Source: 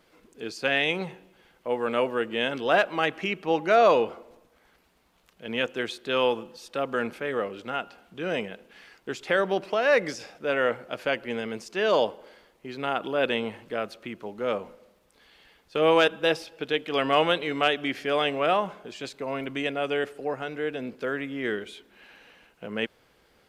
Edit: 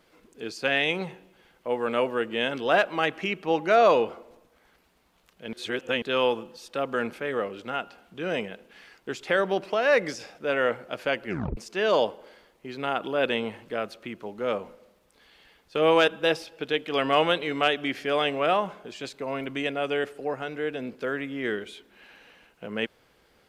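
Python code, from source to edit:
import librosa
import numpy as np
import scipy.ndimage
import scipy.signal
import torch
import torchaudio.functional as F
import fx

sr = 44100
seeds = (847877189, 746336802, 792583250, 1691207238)

y = fx.edit(x, sr, fx.reverse_span(start_s=5.53, length_s=0.49),
    fx.tape_stop(start_s=11.26, length_s=0.31), tone=tone)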